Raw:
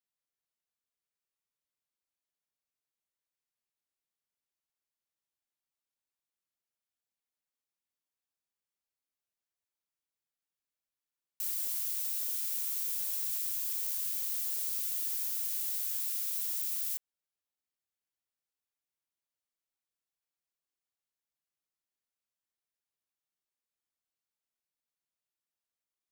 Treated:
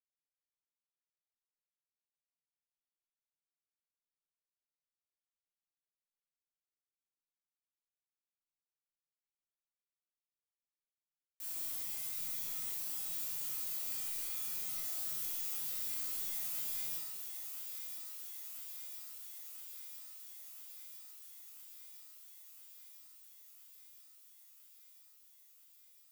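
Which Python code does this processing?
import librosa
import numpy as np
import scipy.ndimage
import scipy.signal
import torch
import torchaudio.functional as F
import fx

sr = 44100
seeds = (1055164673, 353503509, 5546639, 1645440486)

p1 = fx.leveller(x, sr, passes=3)
p2 = fx.comb_fb(p1, sr, f0_hz=160.0, decay_s=0.6, harmonics='all', damping=0.0, mix_pct=90)
p3 = p2 + fx.echo_thinned(p2, sr, ms=1005, feedback_pct=77, hz=310.0, wet_db=-8.0, dry=0)
p4 = fx.room_shoebox(p3, sr, seeds[0], volume_m3=480.0, walls='mixed', distance_m=2.1)
y = p4 * 10.0 ** (-4.5 / 20.0)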